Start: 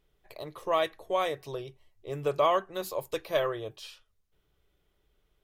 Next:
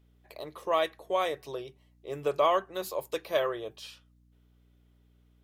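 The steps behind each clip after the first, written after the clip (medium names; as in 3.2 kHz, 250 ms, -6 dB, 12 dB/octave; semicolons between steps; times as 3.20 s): high-pass 190 Hz; hum 60 Hz, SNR 30 dB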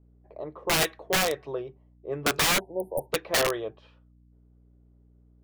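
level-controlled noise filter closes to 580 Hz, open at -23 dBFS; integer overflow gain 22.5 dB; spectral selection erased 2.60–3.10 s, 970–8700 Hz; trim +5 dB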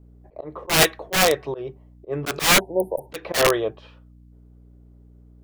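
slow attack 131 ms; trim +9 dB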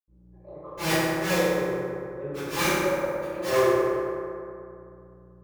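reverberation RT60 2.6 s, pre-delay 77 ms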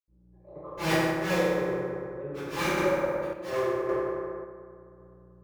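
treble shelf 4.9 kHz -9 dB; random-step tremolo 1.8 Hz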